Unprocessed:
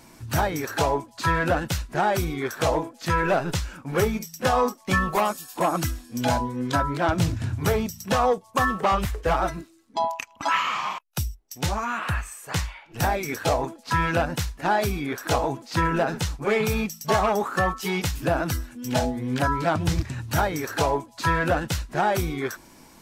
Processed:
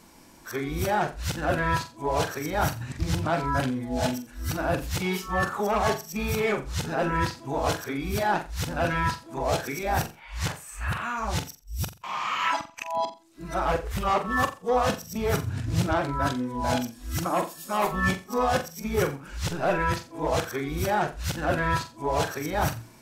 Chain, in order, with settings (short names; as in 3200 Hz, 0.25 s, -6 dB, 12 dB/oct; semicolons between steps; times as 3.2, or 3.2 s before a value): whole clip reversed; flutter echo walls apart 7.5 m, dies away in 0.29 s; gain -3 dB